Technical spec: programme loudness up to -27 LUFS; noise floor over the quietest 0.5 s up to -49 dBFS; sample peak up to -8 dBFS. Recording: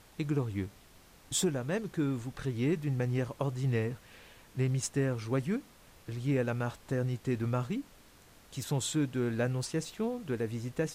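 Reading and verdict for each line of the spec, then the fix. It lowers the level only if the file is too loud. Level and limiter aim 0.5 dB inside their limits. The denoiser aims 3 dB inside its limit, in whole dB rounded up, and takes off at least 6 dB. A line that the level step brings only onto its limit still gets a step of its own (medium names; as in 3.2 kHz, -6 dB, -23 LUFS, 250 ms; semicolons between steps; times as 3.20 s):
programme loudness -33.5 LUFS: pass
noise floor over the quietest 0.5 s -58 dBFS: pass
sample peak -18.0 dBFS: pass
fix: none needed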